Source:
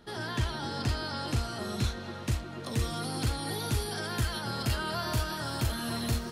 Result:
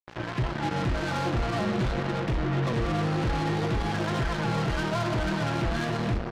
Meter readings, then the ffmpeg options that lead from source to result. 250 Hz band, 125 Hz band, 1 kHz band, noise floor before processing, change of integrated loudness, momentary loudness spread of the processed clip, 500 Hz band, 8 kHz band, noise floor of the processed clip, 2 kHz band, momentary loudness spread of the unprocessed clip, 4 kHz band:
+7.0 dB, +4.5 dB, +6.0 dB, -41 dBFS, +4.5 dB, 2 LU, +7.5 dB, -6.0 dB, -34 dBFS, +5.0 dB, 3 LU, -2.0 dB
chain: -filter_complex "[0:a]lowshelf=f=220:g=6.5,dynaudnorm=f=590:g=3:m=8dB,asplit=2[a][b];[b]asoftclip=type=tanh:threshold=-24dB,volume=-5dB[c];[a][c]amix=inputs=2:normalize=0,flanger=delay=6.3:depth=5.4:regen=60:speed=0.44:shape=sinusoidal,aecho=1:1:6:0.75,acrossover=split=320[d][e];[d]volume=23dB,asoftclip=hard,volume=-23dB[f];[f][e]amix=inputs=2:normalize=0,alimiter=limit=-19.5dB:level=0:latency=1:release=39,lowpass=1.7k,acrusher=bits=4:mix=0:aa=0.5,volume=1dB"

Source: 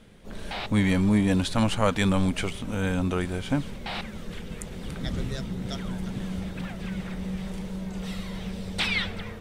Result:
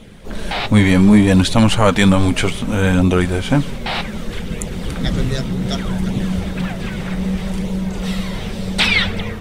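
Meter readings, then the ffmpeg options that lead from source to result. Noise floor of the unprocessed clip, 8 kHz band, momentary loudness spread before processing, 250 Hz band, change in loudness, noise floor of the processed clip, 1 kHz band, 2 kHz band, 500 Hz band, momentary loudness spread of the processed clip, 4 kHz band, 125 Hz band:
-39 dBFS, +11.5 dB, 14 LU, +11.0 dB, +11.0 dB, -27 dBFS, +10.5 dB, +11.5 dB, +11.0 dB, 13 LU, +11.5 dB, +11.5 dB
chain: -af "flanger=delay=0.3:depth=7.7:regen=-48:speed=0.65:shape=sinusoidal,alimiter=level_in=16.5dB:limit=-1dB:release=50:level=0:latency=1,volume=-1dB"

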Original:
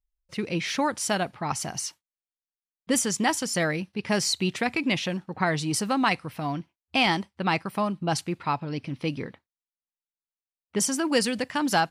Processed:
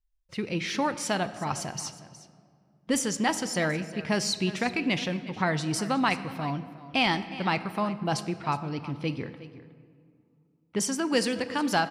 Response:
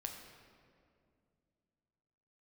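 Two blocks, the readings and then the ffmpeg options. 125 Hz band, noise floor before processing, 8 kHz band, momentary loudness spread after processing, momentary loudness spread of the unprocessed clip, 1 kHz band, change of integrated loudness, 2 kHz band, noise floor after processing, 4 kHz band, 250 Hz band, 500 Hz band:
-1.0 dB, under -85 dBFS, -4.0 dB, 9 LU, 8 LU, -2.0 dB, -2.0 dB, -2.0 dB, -67 dBFS, -2.5 dB, -1.5 dB, -1.5 dB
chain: -filter_complex "[0:a]lowshelf=f=60:g=7.5,aecho=1:1:364:0.15,asplit=2[a][b];[1:a]atrim=start_sample=2205,lowpass=8.2k[c];[b][c]afir=irnorm=-1:irlink=0,volume=-2.5dB[d];[a][d]amix=inputs=2:normalize=0,volume=-5.5dB"

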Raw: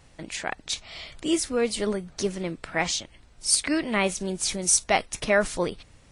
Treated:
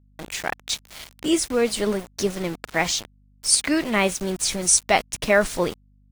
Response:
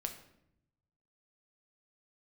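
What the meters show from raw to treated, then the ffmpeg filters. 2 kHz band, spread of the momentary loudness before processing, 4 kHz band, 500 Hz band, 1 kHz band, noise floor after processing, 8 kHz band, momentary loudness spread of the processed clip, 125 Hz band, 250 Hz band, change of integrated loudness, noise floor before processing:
+3.5 dB, 11 LU, +3.5 dB, +3.5 dB, +3.5 dB, -57 dBFS, +3.5 dB, 11 LU, +3.0 dB, +3.5 dB, +3.5 dB, -55 dBFS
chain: -af "aeval=exprs='val(0)*gte(abs(val(0)),0.0168)':c=same,aeval=exprs='val(0)+0.00112*(sin(2*PI*50*n/s)+sin(2*PI*2*50*n/s)/2+sin(2*PI*3*50*n/s)/3+sin(2*PI*4*50*n/s)/4+sin(2*PI*5*50*n/s)/5)':c=same,volume=3.5dB"

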